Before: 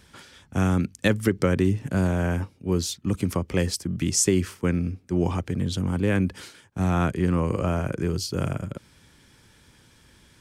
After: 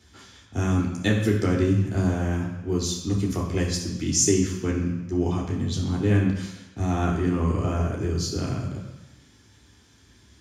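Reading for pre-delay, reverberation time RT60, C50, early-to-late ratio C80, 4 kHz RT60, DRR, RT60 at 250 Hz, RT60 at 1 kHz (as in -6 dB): 3 ms, 1.0 s, 4.5 dB, 6.5 dB, 1.1 s, -4.0 dB, 1.0 s, 1.1 s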